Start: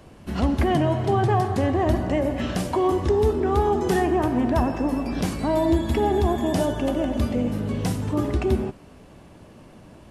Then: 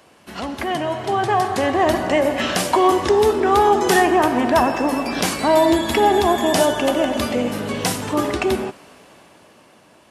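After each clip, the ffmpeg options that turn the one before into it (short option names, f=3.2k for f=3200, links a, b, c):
-af "highpass=f=910:p=1,dynaudnorm=f=260:g=11:m=9dB,volume=4dB"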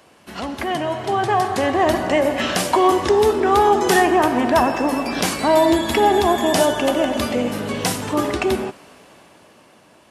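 -af anull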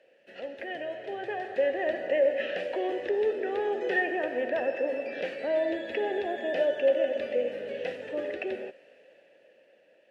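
-filter_complex "[0:a]acrossover=split=4000[a][b];[b]acompressor=threshold=-41dB:ratio=4:attack=1:release=60[c];[a][c]amix=inputs=2:normalize=0,asplit=3[d][e][f];[d]bandpass=f=530:t=q:w=8,volume=0dB[g];[e]bandpass=f=1.84k:t=q:w=8,volume=-6dB[h];[f]bandpass=f=2.48k:t=q:w=8,volume=-9dB[i];[g][h][i]amix=inputs=3:normalize=0"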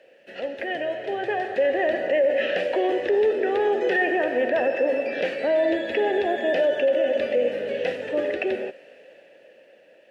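-af "alimiter=limit=-22dB:level=0:latency=1:release=20,volume=8dB"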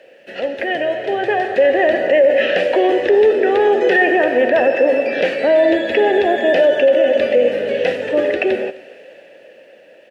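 -af "aecho=1:1:259:0.0668,volume=8.5dB"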